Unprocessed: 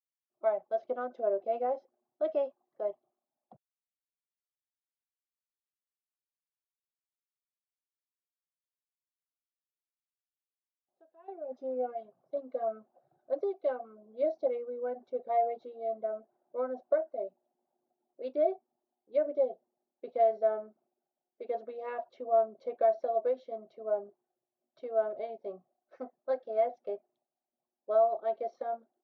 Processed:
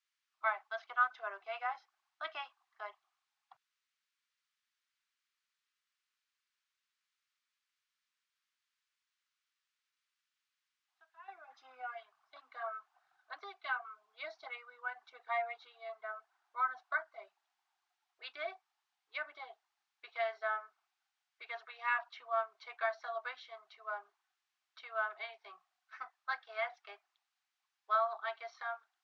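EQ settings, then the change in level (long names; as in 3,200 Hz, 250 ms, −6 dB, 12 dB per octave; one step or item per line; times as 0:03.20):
inverse Chebyshev high-pass filter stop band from 590 Hz, stop band 40 dB
high-frequency loss of the air 120 metres
+16.0 dB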